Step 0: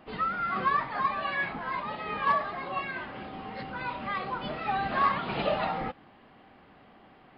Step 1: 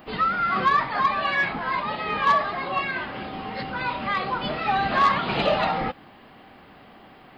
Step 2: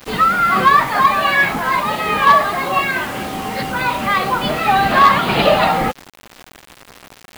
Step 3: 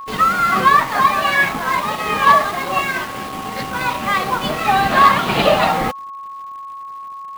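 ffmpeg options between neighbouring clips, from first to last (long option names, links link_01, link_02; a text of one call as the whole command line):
ffmpeg -i in.wav -af "asoftclip=type=tanh:threshold=-16dB,aemphasis=mode=production:type=50kf,volume=6.5dB" out.wav
ffmpeg -i in.wav -af "acrusher=bits=6:mix=0:aa=0.000001,volume=9dB" out.wav
ffmpeg -i in.wav -af "aeval=exprs='sgn(val(0))*max(abs(val(0))-0.0355,0)':channel_layout=same,aeval=exprs='val(0)+0.0355*sin(2*PI*1100*n/s)':channel_layout=same" out.wav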